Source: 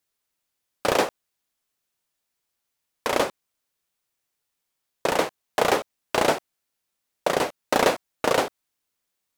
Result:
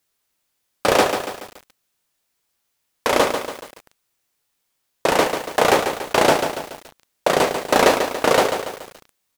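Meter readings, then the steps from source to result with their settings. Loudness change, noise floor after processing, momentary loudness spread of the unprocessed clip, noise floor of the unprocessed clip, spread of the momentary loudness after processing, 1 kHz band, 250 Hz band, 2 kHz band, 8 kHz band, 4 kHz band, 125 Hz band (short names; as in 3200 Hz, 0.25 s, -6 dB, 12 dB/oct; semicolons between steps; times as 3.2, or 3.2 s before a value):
+6.0 dB, -73 dBFS, 8 LU, -81 dBFS, 15 LU, +6.5 dB, +6.0 dB, +6.0 dB, +6.5 dB, +6.5 dB, +6.0 dB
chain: in parallel at -4 dB: soft clip -20 dBFS, distortion -8 dB; on the sum: doubler 20 ms -13 dB; lo-fi delay 0.142 s, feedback 55%, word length 6-bit, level -7 dB; gain +2.5 dB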